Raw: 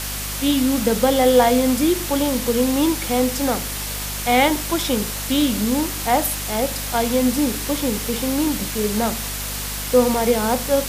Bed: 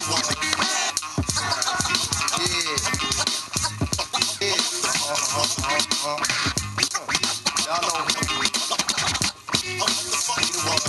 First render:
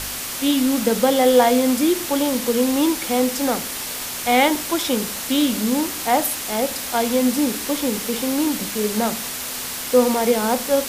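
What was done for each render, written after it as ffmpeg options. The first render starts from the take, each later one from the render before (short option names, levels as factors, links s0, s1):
-af "bandreject=f=50:t=h:w=4,bandreject=f=100:t=h:w=4,bandreject=f=150:t=h:w=4,bandreject=f=200:t=h:w=4"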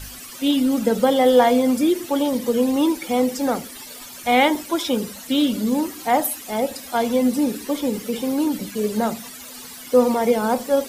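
-af "afftdn=nr=15:nf=-29"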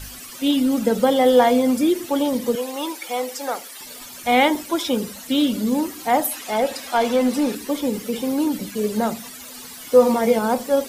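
-filter_complex "[0:a]asettb=1/sr,asplit=3[s0][s1][s2];[s0]atrim=end=2.554[s3];[s1]atrim=start=2.55:end=3.81,asetpts=PTS-STARTPTS,afade=t=in:d=0.004:c=qsin,afade=t=out:st=1.256:d=0.004:c=qsin,highpass=600[s4];[s2]atrim=start=3.806[s5];[s3][s4]acrossfade=d=0.004:c1=hsin:c2=qsin[s6];[s6][s5]acrossfade=d=0.004:c1=qsin:c2=hsin,asettb=1/sr,asplit=3[s7][s8][s9];[s7]atrim=end=6.314[s10];[s8]atrim=start=6.31:end=7.55,asetpts=PTS-STARTPTS,afade=t=in:d=0.004:c=qsin,afade=t=out:st=1.236:d=0.004:c=qsin,asplit=2[s11][s12];[s12]highpass=f=720:p=1,volume=3.98,asoftclip=type=tanh:threshold=0.355[s13];[s11][s13]amix=inputs=2:normalize=0,lowpass=f=3800:p=1,volume=0.501[s14];[s9]atrim=start=7.546[s15];[s10][s14]acrossfade=d=0.004:c1=hsin:c2=qsin[s16];[s16][s15]acrossfade=d=0.004:c1=qsin:c2=hsin,asettb=1/sr,asplit=3[s17][s18][s19];[s17]atrim=end=9.794[s20];[s18]atrim=start=9.79:end=10.39,asetpts=PTS-STARTPTS,afade=t=in:d=0.004:c=qsin,afade=t=out:st=0.596:d=0.004:c=qsin,asplit=2[s21][s22];[s22]adelay=18,volume=0.501[s23];[s21][s23]amix=inputs=2:normalize=0,atrim=end_sample=26460[s24];[s19]atrim=start=10.386[s25];[s20][s24]acrossfade=d=0.004:c1=hsin:c2=qsin[s26];[s26][s25]acrossfade=d=0.004:c1=qsin:c2=hsin"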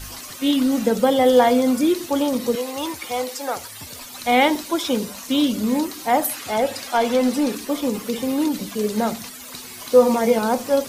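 -filter_complex "[1:a]volume=0.133[s0];[0:a][s0]amix=inputs=2:normalize=0"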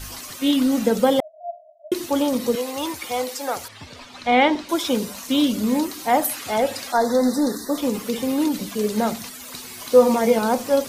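-filter_complex "[0:a]asettb=1/sr,asplit=3[s0][s1][s2];[s0]atrim=end=1.204[s3];[s1]atrim=start=1.2:end=1.92,asetpts=PTS-STARTPTS,afade=t=in:d=0.004:c=qsin,afade=t=out:st=0.716:d=0.004:c=qsin,asuperpass=centerf=640:order=12:qfactor=7.4[s4];[s2]atrim=start=1.916[s5];[s3][s4]acrossfade=d=0.004:c1=hsin:c2=qsin[s6];[s6][s5]acrossfade=d=0.004:c1=qsin:c2=hsin,asettb=1/sr,asplit=3[s7][s8][s9];[s7]atrim=end=3.684[s10];[s8]atrim=start=3.68:end=4.69,asetpts=PTS-STARTPTS,afade=t=in:d=0.004:c=qsin,afade=t=out:st=1.006:d=0.004:c=qsin,lowpass=3800[s11];[s9]atrim=start=4.686[s12];[s10][s11]acrossfade=d=0.004:c1=hsin:c2=qsin[s13];[s13][s12]acrossfade=d=0.004:c1=qsin:c2=hsin,asettb=1/sr,asplit=3[s14][s15][s16];[s14]atrim=end=6.924[s17];[s15]atrim=start=6.92:end=7.78,asetpts=PTS-STARTPTS,afade=t=in:d=0.004:c=qsin,afade=t=out:st=0.856:d=0.004:c=qsin,asuperstop=centerf=2700:order=20:qfactor=1.7[s18];[s16]atrim=start=7.776[s19];[s17][s18]acrossfade=d=0.004:c1=hsin:c2=qsin[s20];[s20][s19]acrossfade=d=0.004:c1=qsin:c2=hsin"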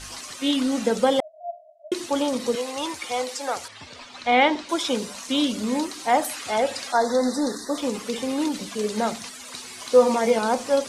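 -af "lowpass=f=9600:w=0.5412,lowpass=f=9600:w=1.3066,lowshelf=f=310:g=-8"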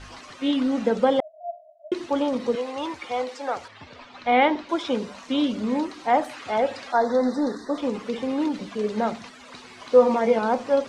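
-af "lowpass=f=3100:p=1,aemphasis=mode=reproduction:type=50fm"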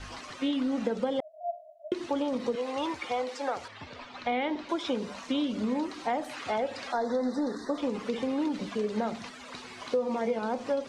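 -filter_complex "[0:a]acrossover=split=560|2100[s0][s1][s2];[s1]alimiter=limit=0.0841:level=0:latency=1:release=235[s3];[s0][s3][s2]amix=inputs=3:normalize=0,acompressor=threshold=0.0447:ratio=4"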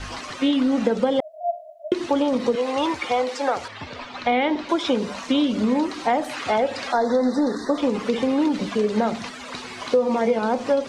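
-af "volume=2.82"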